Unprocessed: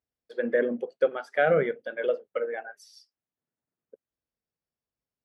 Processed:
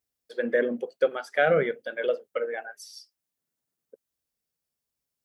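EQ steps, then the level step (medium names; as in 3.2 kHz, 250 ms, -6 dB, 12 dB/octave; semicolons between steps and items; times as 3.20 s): treble shelf 3.7 kHz +11.5 dB; 0.0 dB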